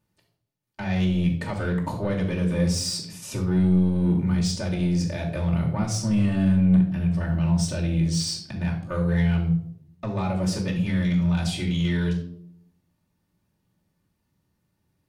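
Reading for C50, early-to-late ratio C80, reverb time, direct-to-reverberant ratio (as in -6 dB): 7.0 dB, 11.0 dB, 0.65 s, -4.5 dB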